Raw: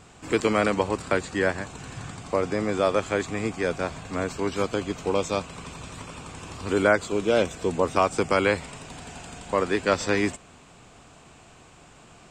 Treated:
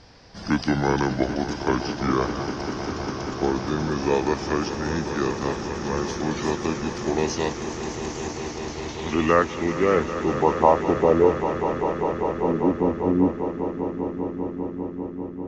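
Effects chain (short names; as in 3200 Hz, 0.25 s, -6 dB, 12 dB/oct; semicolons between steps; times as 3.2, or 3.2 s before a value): speed glide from 65% -> 94%; low-pass sweep 7400 Hz -> 270 Hz, 8.16–11.98; swelling echo 0.198 s, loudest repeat 5, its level -13 dB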